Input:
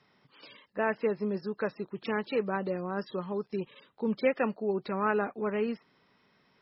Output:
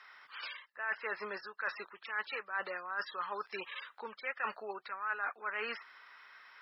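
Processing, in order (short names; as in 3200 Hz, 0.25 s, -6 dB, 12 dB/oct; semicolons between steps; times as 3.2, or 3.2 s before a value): HPF 1000 Hz 12 dB/oct; bell 1500 Hz +12.5 dB 1.3 oct; reverse; compressor 6:1, threshold -41 dBFS, peak gain reduction 22 dB; reverse; gain +5.5 dB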